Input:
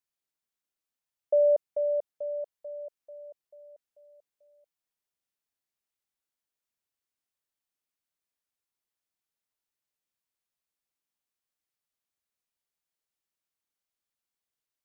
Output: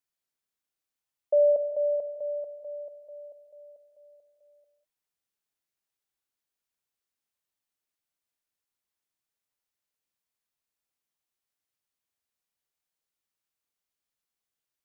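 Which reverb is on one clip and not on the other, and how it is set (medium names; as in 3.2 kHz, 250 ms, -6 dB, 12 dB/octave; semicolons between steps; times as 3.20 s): gated-style reverb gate 220 ms flat, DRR 7.5 dB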